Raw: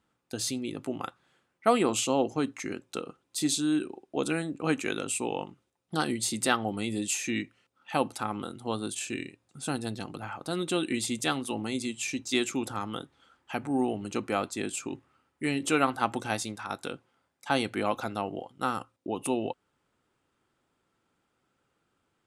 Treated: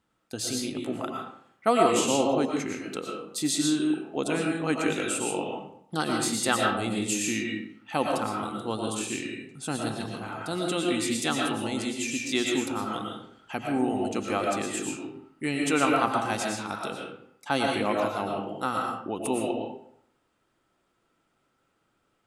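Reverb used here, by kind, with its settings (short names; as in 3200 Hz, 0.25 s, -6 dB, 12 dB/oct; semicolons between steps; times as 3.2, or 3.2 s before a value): digital reverb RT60 0.66 s, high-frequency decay 0.65×, pre-delay 75 ms, DRR -0.5 dB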